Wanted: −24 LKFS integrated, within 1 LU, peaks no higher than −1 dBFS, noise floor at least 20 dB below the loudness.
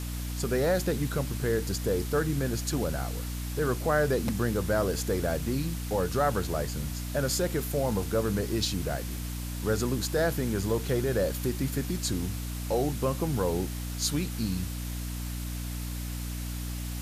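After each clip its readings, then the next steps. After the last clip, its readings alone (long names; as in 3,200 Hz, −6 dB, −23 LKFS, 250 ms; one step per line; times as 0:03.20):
mains hum 60 Hz; hum harmonics up to 300 Hz; level of the hum −32 dBFS; background noise floor −35 dBFS; target noise floor −50 dBFS; integrated loudness −30.0 LKFS; sample peak −14.0 dBFS; target loudness −24.0 LKFS
→ hum removal 60 Hz, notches 5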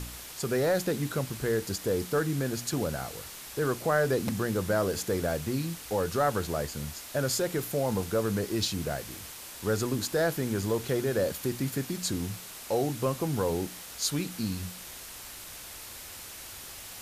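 mains hum none found; background noise floor −44 dBFS; target noise floor −51 dBFS
→ broadband denoise 7 dB, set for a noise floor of −44 dBFS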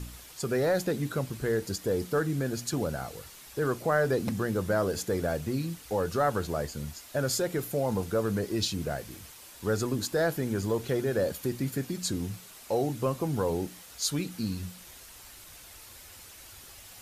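background noise floor −50 dBFS; target noise floor −51 dBFS
→ broadband denoise 6 dB, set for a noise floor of −50 dBFS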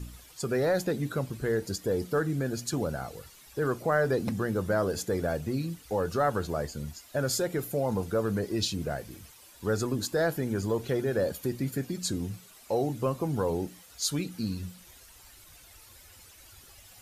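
background noise floor −54 dBFS; integrated loudness −30.5 LKFS; sample peak −15.5 dBFS; target loudness −24.0 LKFS
→ level +6.5 dB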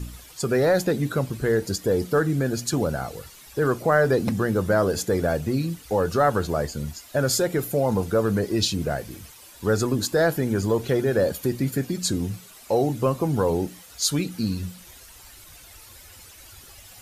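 integrated loudness −24.0 LKFS; sample peak −9.0 dBFS; background noise floor −47 dBFS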